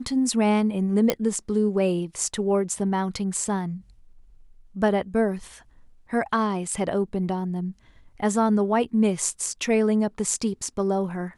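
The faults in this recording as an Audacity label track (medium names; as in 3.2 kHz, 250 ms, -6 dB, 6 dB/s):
1.100000	1.100000	pop -5 dBFS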